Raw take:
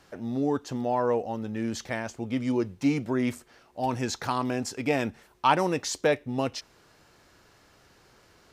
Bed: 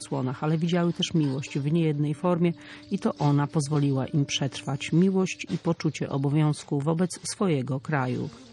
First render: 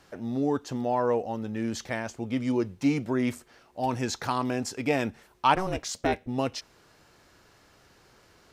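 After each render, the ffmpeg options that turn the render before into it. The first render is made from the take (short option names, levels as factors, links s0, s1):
-filter_complex "[0:a]asplit=3[s0][s1][s2];[s0]afade=t=out:st=5.54:d=0.02[s3];[s1]aeval=exprs='val(0)*sin(2*PI*190*n/s)':c=same,afade=t=in:st=5.54:d=0.02,afade=t=out:st=6.26:d=0.02[s4];[s2]afade=t=in:st=6.26:d=0.02[s5];[s3][s4][s5]amix=inputs=3:normalize=0"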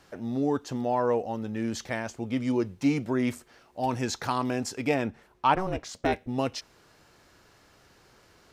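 -filter_complex "[0:a]asettb=1/sr,asplit=3[s0][s1][s2];[s0]atrim=end=4.944[s3];[s1]atrim=start=4.94:end=6.05,asetpts=PTS-STARTPTS,afade=t=in:d=0.004:c=qsin,afade=t=out:st=1.106:d=0.004:c=qsin,highshelf=f=3300:g=-9.5[s4];[s2]atrim=start=6.046[s5];[s3][s4]acrossfade=d=0.004:c1=hsin:c2=qsin[s6];[s6][s5]acrossfade=d=0.004:c1=qsin:c2=hsin"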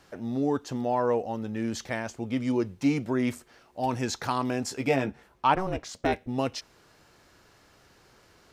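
-filter_complex "[0:a]asettb=1/sr,asplit=3[s0][s1][s2];[s0]atrim=end=4.674[s3];[s1]atrim=start=4.67:end=5.45,asetpts=PTS-STARTPTS,afade=t=in:d=0.004:c=qsin,afade=t=out:st=0.776:d=0.004:c=qsin,asplit=2[s4][s5];[s5]adelay=15,volume=0.531[s6];[s4][s6]amix=inputs=2:normalize=0,atrim=end_sample=34398[s7];[s2]atrim=start=5.446[s8];[s3][s7]acrossfade=d=0.004:c1=hsin:c2=qsin[s9];[s9][s8]acrossfade=d=0.004:c1=qsin:c2=hsin"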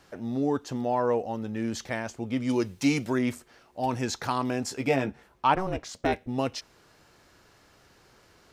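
-filter_complex "[0:a]asettb=1/sr,asplit=3[s0][s1][s2];[s0]atrim=end=2.494[s3];[s1]atrim=start=2.49:end=3.19,asetpts=PTS-STARTPTS,afade=t=in:d=0.004:c=qsin,afade=t=out:st=0.696:d=0.004:c=qsin,highshelf=f=2200:g=10.5[s4];[s2]atrim=start=3.186[s5];[s3][s4]acrossfade=d=0.004:c1=hsin:c2=qsin[s6];[s6][s5]acrossfade=d=0.004:c1=qsin:c2=hsin"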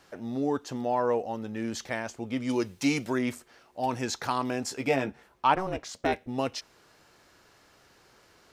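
-af "lowshelf=f=210:g=-6"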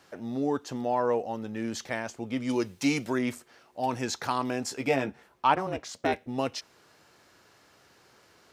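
-af "highpass=73"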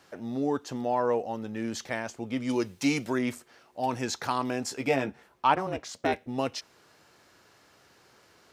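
-af anull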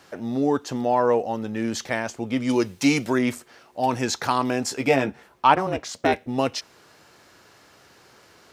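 -af "volume=2.11"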